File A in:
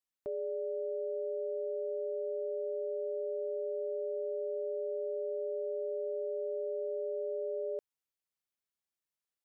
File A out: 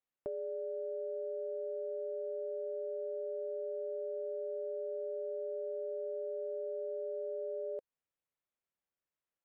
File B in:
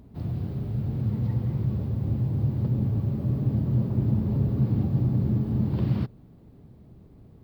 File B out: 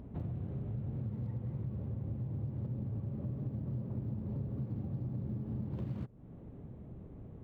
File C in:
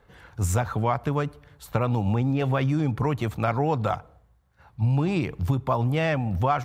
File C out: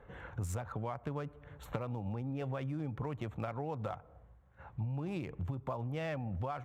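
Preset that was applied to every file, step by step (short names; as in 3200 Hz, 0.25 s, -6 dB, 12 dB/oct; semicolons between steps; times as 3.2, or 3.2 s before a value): Wiener smoothing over 9 samples; bell 540 Hz +4 dB 0.32 oct; compressor 6:1, threshold -38 dBFS; gain +1.5 dB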